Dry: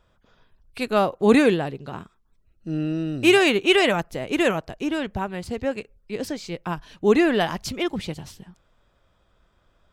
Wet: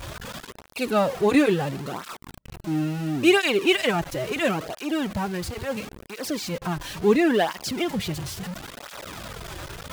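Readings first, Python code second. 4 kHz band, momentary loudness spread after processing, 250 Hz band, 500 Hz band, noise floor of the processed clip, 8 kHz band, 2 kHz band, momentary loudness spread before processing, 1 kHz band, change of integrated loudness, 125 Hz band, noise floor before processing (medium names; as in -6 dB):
-1.5 dB, 18 LU, -1.5 dB, -2.0 dB, -46 dBFS, +2.5 dB, -2.0 dB, 17 LU, -1.0 dB, -2.0 dB, +1.5 dB, -65 dBFS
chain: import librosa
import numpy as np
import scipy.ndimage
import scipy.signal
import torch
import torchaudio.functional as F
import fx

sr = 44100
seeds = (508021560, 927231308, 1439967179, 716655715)

y = x + 0.5 * 10.0 ** (-27.0 / 20.0) * np.sign(x)
y = fx.flanger_cancel(y, sr, hz=0.73, depth_ms=4.8)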